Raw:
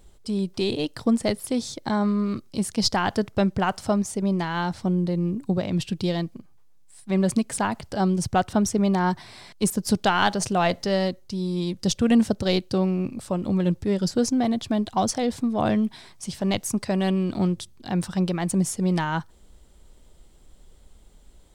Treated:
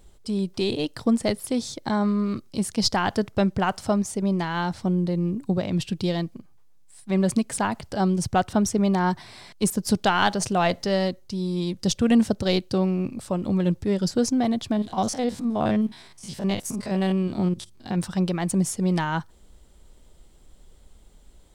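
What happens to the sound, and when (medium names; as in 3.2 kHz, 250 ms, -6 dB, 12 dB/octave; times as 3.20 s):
14.72–17.98 s: spectrogram pixelated in time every 50 ms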